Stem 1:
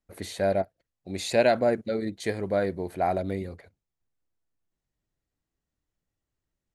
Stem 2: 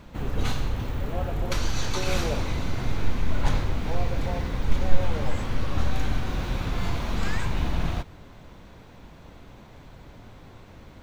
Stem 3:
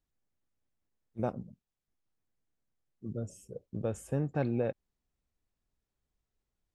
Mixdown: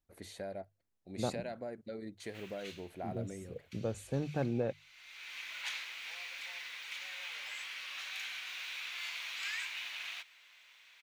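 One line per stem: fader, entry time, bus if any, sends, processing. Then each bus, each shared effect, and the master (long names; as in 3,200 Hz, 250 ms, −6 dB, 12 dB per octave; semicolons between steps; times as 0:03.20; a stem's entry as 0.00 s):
−12.0 dB, 0.00 s, no send, downward compressor 5 to 1, threshold −27 dBFS, peak gain reduction 10.5 dB
−5.0 dB, 2.20 s, no send, high-pass with resonance 2,400 Hz, resonance Q 2.3; automatic ducking −22 dB, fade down 0.75 s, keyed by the third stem
−2.5 dB, 0.00 s, no send, no processing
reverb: not used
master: mains-hum notches 50/100/150 Hz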